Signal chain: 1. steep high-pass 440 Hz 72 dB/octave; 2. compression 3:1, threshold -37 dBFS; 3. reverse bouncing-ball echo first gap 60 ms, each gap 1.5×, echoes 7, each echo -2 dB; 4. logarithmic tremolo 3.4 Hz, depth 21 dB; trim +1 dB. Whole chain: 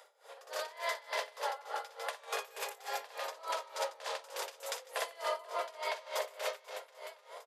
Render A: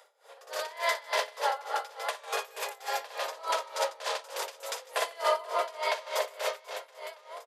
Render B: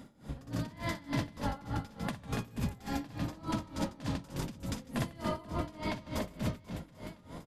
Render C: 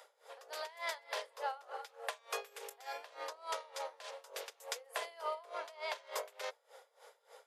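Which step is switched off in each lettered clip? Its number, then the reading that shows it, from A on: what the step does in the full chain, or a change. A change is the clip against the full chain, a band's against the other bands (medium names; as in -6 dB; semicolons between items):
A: 2, mean gain reduction 4.0 dB; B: 1, crest factor change -2.0 dB; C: 3, crest factor change +3.0 dB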